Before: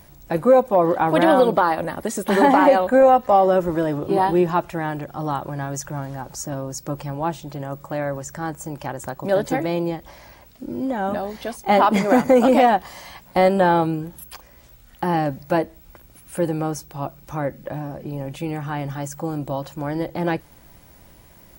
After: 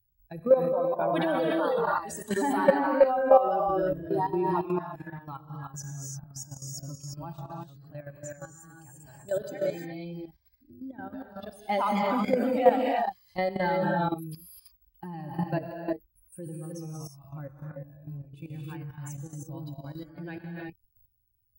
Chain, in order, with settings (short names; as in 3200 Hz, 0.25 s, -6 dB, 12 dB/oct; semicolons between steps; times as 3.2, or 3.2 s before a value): per-bin expansion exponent 2; non-linear reverb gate 0.37 s rising, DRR -1.5 dB; level quantiser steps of 12 dB; gain -2 dB